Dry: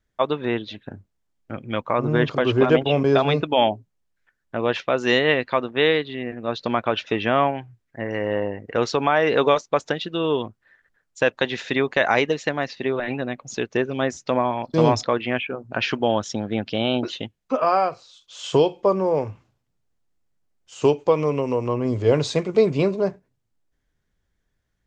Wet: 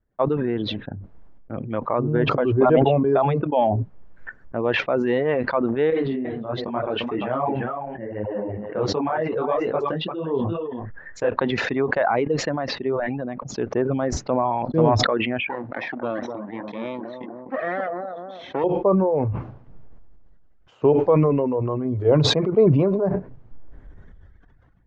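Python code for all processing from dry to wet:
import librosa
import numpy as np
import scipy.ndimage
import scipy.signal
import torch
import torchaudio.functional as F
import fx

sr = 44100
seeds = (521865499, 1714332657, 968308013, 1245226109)

y = fx.chain(x, sr, fx.echo_single(ms=347, db=-9.0),
    fx.detune_double(cents=45), at=(5.9, 11.36))
y = fx.chain(y, sr, fx.lower_of_two(delay_ms=0.53),
    fx.cabinet(low_hz=380.0, low_slope=12, high_hz=4900.0, hz=(420.0, 1300.0, 1900.0), db=(-9, -7, 6)),
    fx.echo_bbd(ms=251, stages=2048, feedback_pct=32, wet_db=-5), at=(15.49, 18.64))
y = fx.dereverb_blind(y, sr, rt60_s=1.5)
y = scipy.signal.sosfilt(scipy.signal.butter(2, 1100.0, 'lowpass', fs=sr, output='sos'), y)
y = fx.sustainer(y, sr, db_per_s=23.0)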